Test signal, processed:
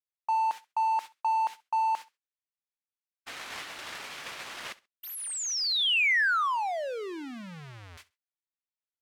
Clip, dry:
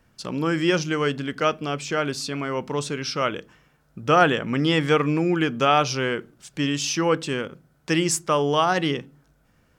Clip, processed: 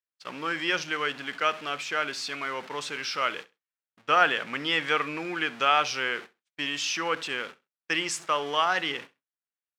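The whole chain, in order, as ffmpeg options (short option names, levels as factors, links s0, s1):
-af "aeval=exprs='val(0)+0.5*0.0251*sgn(val(0))':c=same,agate=range=0.00112:threshold=0.0316:ratio=16:detection=peak,bandpass=f=2100:t=q:w=0.81:csg=0,aecho=1:1:66|132:0.0944|0.0198"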